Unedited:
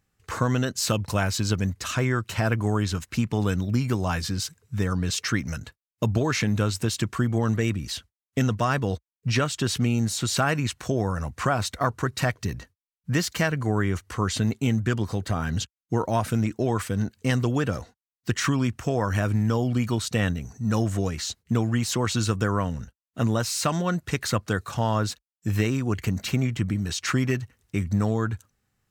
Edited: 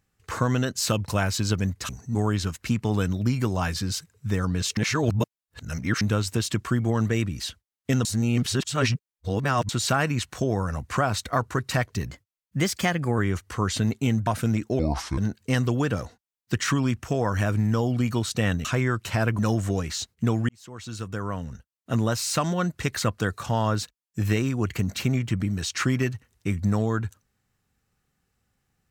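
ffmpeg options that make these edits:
-filter_complex "[0:a]asplit=15[s0][s1][s2][s3][s4][s5][s6][s7][s8][s9][s10][s11][s12][s13][s14];[s0]atrim=end=1.892[s15];[s1]atrim=start=20.408:end=20.672[s16];[s2]atrim=start=2.628:end=5.252[s17];[s3]atrim=start=5.248:end=6.492,asetpts=PTS-STARTPTS,areverse[s18];[s4]atrim=start=6.488:end=8.532[s19];[s5]atrim=start=8.528:end=10.172,asetpts=PTS-STARTPTS,areverse[s20];[s6]atrim=start=10.168:end=12.574[s21];[s7]atrim=start=12.57:end=13.78,asetpts=PTS-STARTPTS,asetrate=48951,aresample=44100[s22];[s8]atrim=start=13.776:end=14.872[s23];[s9]atrim=start=16.158:end=16.684[s24];[s10]atrim=start=16.68:end=16.94,asetpts=PTS-STARTPTS,asetrate=29547,aresample=44100,atrim=end_sample=17113,asetpts=PTS-STARTPTS[s25];[s11]atrim=start=16.936:end=20.412[s26];[s12]atrim=start=1.888:end=2.632[s27];[s13]atrim=start=20.668:end=21.77,asetpts=PTS-STARTPTS,afade=t=out:st=1.098:d=0.004:c=hsin[s28];[s14]atrim=start=21.77,asetpts=PTS-STARTPTS,afade=t=in:d=1.56[s29];[s15][s16]acrossfade=d=0.004:c1=hsin:c2=hsin[s30];[s30][s17]acrossfade=d=0.004:c1=hsin:c2=hsin[s31];[s31][s18]acrossfade=d=0.004:c1=hsin:c2=hsin[s32];[s32][s19]acrossfade=d=0.004:c1=hsin:c2=hsin[s33];[s33][s20]acrossfade=d=0.004:c1=hsin:c2=hsin[s34];[s34][s21]acrossfade=d=0.004:c1=hsin:c2=hsin[s35];[s35][s22]acrossfade=d=0.004:c1=hsin:c2=hsin[s36];[s36][s23]acrossfade=d=0.004:c1=hsin:c2=hsin[s37];[s37][s24]acrossfade=d=0.004:c1=hsin:c2=hsin[s38];[s38][s25]acrossfade=d=0.004:c1=hsin:c2=hsin[s39];[s39][s26]acrossfade=d=0.004:c1=hsin:c2=hsin[s40];[s40][s27]acrossfade=d=0.004:c1=hsin:c2=hsin[s41];[s28][s29]concat=n=2:v=0:a=1[s42];[s41][s42]acrossfade=d=0.004:c1=hsin:c2=hsin"

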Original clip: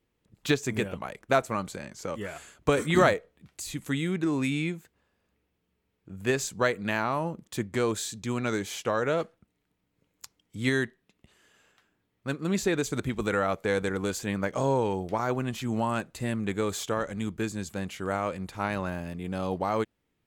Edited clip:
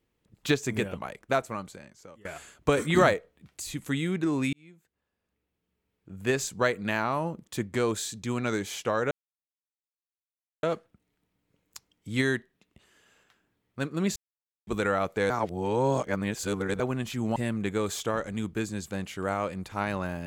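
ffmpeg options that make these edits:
-filter_complex "[0:a]asplit=9[s0][s1][s2][s3][s4][s5][s6][s7][s8];[s0]atrim=end=2.25,asetpts=PTS-STARTPTS,afade=t=out:st=1:d=1.25:silence=0.0668344[s9];[s1]atrim=start=2.25:end=4.53,asetpts=PTS-STARTPTS,afade=t=in:d=0.004:c=hsin:silence=0.0668344,afade=t=out:st=2.276:d=0.004:c=hsin[s10];[s2]atrim=start=4.53:end=9.11,asetpts=PTS-STARTPTS,afade=t=in:d=1.81,afade=t=out:st=4.576:d=0.004:c=hsin,apad=pad_dur=1.52[s11];[s3]atrim=start=9.11:end=12.64,asetpts=PTS-STARTPTS,afade=t=in:d=0.004:c=hsin,afade=t=out:st=3.526:d=0.004:c=hsin[s12];[s4]atrim=start=12.64:end=13.15,asetpts=PTS-STARTPTS,volume=0[s13];[s5]atrim=start=13.15:end=13.782,asetpts=PTS-STARTPTS,afade=t=in:d=0.004:c=hsin[s14];[s6]atrim=start=13.778:end=15.282,asetpts=PTS-STARTPTS,areverse[s15];[s7]atrim=start=15.278:end=15.842[s16];[s8]atrim=start=16.188[s17];[s9][s10][s11][s12][s13][s14]concat=n=6:v=0:a=1[s18];[s18][s15]acrossfade=d=0.004:c1=hsin:c2=hsin[s19];[s19][s16]acrossfade=d=0.004:c1=hsin:c2=hsin[s20];[s20][s17]acrossfade=d=0.004:c1=hsin:c2=hsin"

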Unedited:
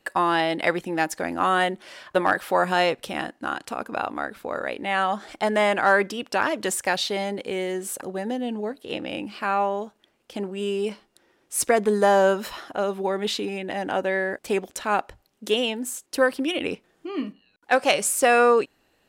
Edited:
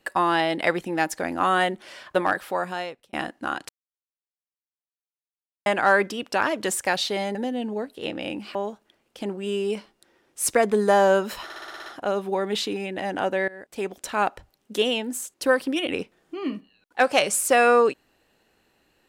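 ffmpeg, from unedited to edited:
-filter_complex "[0:a]asplit=14[s0][s1][s2][s3][s4][s5][s6][s7][s8][s9][s10][s11][s12][s13];[s0]atrim=end=3.13,asetpts=PTS-STARTPTS,afade=t=out:st=2.08:d=1.05[s14];[s1]atrim=start=3.13:end=3.69,asetpts=PTS-STARTPTS,afade=t=in:d=0.004:c=hsin,afade=t=out:st=0.556:d=0.004:c=hsin[s15];[s2]atrim=start=3.69:end=5.66,asetpts=PTS-STARTPTS,volume=0[s16];[s3]atrim=start=5.66:end=7.352,asetpts=PTS-STARTPTS,afade=t=in:d=0.004:c=hsin[s17];[s4]atrim=start=8.218:end=9.422[s18];[s5]atrim=start=9.688:end=12.642[s19];[s6]atrim=start=12.578:end=12.642[s20];[s7]atrim=start=12.578:end=12.642[s21];[s8]atrim=start=12.578:end=12.642[s22];[s9]atrim=start=12.578:end=12.642[s23];[s10]atrim=start=12.578:end=12.642[s24];[s11]atrim=start=12.578:end=12.642[s25];[s12]atrim=start=12.578:end=14.2,asetpts=PTS-STARTPTS,afade=t=out:st=1.618:d=0.004:c=hsin:silence=0.0891251[s26];[s13]atrim=start=14.2,asetpts=PTS-STARTPTS,afade=t=in:d=0.65:silence=0.0891251[s27];[s14][s15][s16][s17]concat=n=4:v=0:a=1[s28];[s28][s18]acrossfade=d=0.004:c1=hsin:c2=hsin[s29];[s29][s19]acrossfade=d=0.004:c1=hsin:c2=hsin[s30];[s30][s20]acrossfade=d=0.004:c1=hsin:c2=hsin[s31];[s31][s21]acrossfade=d=0.004:c1=hsin:c2=hsin[s32];[s32][s22]acrossfade=d=0.004:c1=hsin:c2=hsin[s33];[s33][s23]acrossfade=d=0.004:c1=hsin:c2=hsin[s34];[s34][s24]acrossfade=d=0.004:c1=hsin:c2=hsin[s35];[s35][s25]acrossfade=d=0.004:c1=hsin:c2=hsin[s36];[s26][s27]concat=n=2:v=0:a=1[s37];[s36][s37]acrossfade=d=0.004:c1=hsin:c2=hsin"

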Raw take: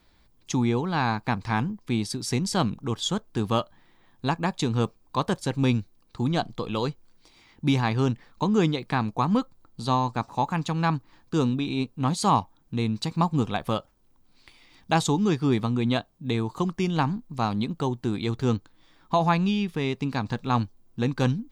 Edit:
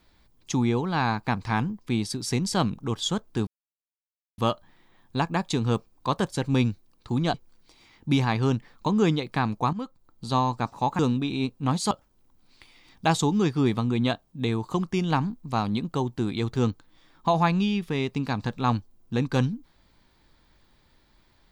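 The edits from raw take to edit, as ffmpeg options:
-filter_complex "[0:a]asplit=6[s0][s1][s2][s3][s4][s5];[s0]atrim=end=3.47,asetpts=PTS-STARTPTS,afade=t=out:st=3.466:d=0.004:c=hsin,apad=pad_dur=0.91[s6];[s1]atrim=start=3.47:end=6.432,asetpts=PTS-STARTPTS,afade=t=in:d=0.004:c=hsin[s7];[s2]atrim=start=6.898:end=9.29,asetpts=PTS-STARTPTS,afade=t=out:st=2.388:d=0.004:c=hsin:silence=0.211349[s8];[s3]atrim=start=9.29:end=10.552,asetpts=PTS-STARTPTS,afade=t=in:d=0.6:silence=0.211349[s9];[s4]atrim=start=11.358:end=12.282[s10];[s5]atrim=start=13.768[s11];[s6][s7]concat=n=2:v=0:a=1[s12];[s8][s9]concat=n=2:v=0:a=1[s13];[s12][s13]acrossfade=d=0.004:c1=hsin:c2=hsin[s14];[s14][s10]acrossfade=d=0.004:c1=hsin:c2=hsin[s15];[s15][s11]acrossfade=d=0.004:c1=hsin:c2=hsin"

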